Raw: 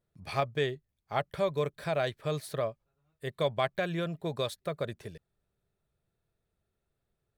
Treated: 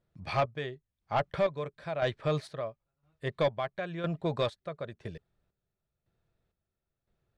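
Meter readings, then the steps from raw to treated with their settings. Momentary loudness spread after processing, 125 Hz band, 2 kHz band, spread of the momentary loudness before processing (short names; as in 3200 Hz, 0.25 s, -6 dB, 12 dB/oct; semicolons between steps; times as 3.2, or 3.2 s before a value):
11 LU, +0.5 dB, -1.0 dB, 9 LU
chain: notch 420 Hz, Q 12; dynamic EQ 1000 Hz, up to +3 dB, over -43 dBFS, Q 0.79; chopper 0.99 Hz, depth 65%, duty 45%; soft clip -23.5 dBFS, distortion -13 dB; air absorption 99 m; gain +4 dB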